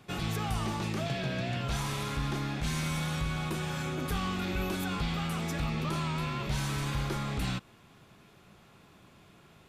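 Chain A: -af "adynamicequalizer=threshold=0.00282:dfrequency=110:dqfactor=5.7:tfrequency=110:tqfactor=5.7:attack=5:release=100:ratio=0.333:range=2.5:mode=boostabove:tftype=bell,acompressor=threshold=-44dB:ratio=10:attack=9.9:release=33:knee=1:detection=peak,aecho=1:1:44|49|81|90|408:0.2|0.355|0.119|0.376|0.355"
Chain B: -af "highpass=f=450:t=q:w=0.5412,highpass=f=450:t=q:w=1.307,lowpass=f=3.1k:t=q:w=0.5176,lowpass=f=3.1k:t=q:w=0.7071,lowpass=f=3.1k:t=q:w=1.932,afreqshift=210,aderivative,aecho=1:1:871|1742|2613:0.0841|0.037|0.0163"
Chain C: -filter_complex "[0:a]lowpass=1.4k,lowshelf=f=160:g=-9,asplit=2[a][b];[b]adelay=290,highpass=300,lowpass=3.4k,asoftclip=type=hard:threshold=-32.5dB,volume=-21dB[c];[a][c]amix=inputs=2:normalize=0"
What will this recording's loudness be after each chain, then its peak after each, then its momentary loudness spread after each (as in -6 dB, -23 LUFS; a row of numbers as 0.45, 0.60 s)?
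-42.5, -49.5, -37.5 LUFS; -29.5, -38.0, -24.0 dBFS; 14, 4, 2 LU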